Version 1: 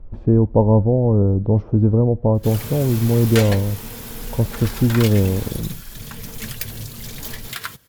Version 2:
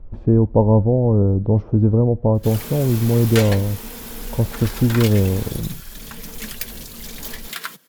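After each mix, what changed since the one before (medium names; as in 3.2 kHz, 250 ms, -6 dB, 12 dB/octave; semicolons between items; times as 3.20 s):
background: add steep high-pass 160 Hz 48 dB/octave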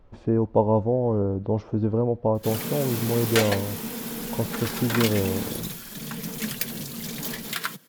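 speech: add tilt EQ +3.5 dB/octave; background: add bass shelf 210 Hz +11.5 dB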